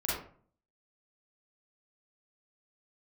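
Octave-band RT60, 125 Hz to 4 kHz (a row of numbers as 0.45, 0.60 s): 0.65, 0.60, 0.50, 0.45, 0.40, 0.30 s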